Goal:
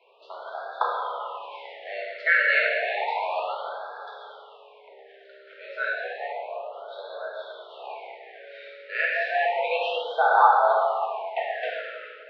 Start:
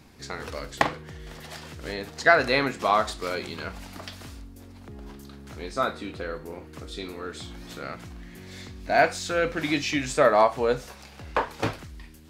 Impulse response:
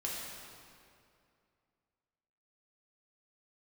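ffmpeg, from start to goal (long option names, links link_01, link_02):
-filter_complex "[0:a]highpass=frequency=320:width_type=q:width=0.5412,highpass=frequency=320:width_type=q:width=1.307,lowpass=frequency=3200:width_type=q:width=0.5176,lowpass=frequency=3200:width_type=q:width=0.7071,lowpass=frequency=3200:width_type=q:width=1.932,afreqshift=190[link_01];[1:a]atrim=start_sample=2205[link_02];[link_01][link_02]afir=irnorm=-1:irlink=0,afftfilt=real='re*(1-between(b*sr/1024,900*pow(2400/900,0.5+0.5*sin(2*PI*0.31*pts/sr))/1.41,900*pow(2400/900,0.5+0.5*sin(2*PI*0.31*pts/sr))*1.41))':imag='im*(1-between(b*sr/1024,900*pow(2400/900,0.5+0.5*sin(2*PI*0.31*pts/sr))/1.41,900*pow(2400/900,0.5+0.5*sin(2*PI*0.31*pts/sr))*1.41))':win_size=1024:overlap=0.75"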